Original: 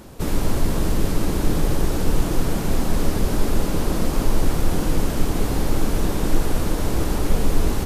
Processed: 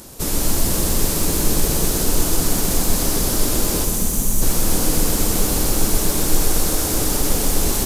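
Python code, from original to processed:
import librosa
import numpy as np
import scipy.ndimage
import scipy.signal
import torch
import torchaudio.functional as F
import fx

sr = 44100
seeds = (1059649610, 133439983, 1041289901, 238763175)

y = fx.spec_box(x, sr, start_s=3.85, length_s=0.57, low_hz=270.0, high_hz=5700.0, gain_db=-10)
y = fx.bass_treble(y, sr, bass_db=-2, treble_db=14)
y = fx.echo_crushed(y, sr, ms=126, feedback_pct=80, bits=6, wet_db=-6.0)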